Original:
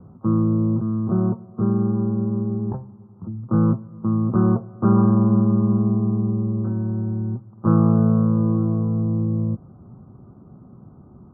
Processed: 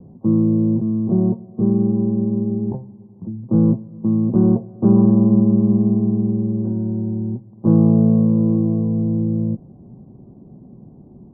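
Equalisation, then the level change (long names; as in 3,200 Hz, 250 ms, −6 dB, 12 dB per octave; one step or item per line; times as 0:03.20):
moving average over 34 samples
high-frequency loss of the air 390 metres
parametric band 87 Hz −9.5 dB 1.2 octaves
+6.5 dB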